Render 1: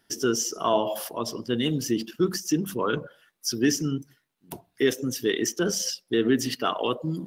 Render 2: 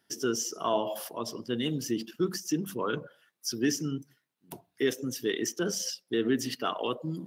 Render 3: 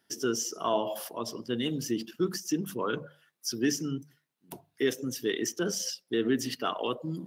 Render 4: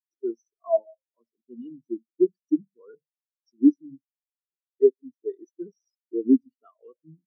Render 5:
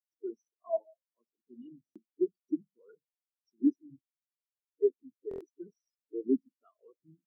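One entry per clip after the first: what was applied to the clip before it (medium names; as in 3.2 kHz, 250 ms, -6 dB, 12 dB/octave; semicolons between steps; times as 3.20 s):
high-pass 91 Hz; trim -5 dB
hum notches 50/100/150 Hz
spectral contrast expander 4:1; trim +7.5 dB
coarse spectral quantiser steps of 30 dB; buffer glitch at 1.84/5.29 s, samples 1024, times 4; trim -9 dB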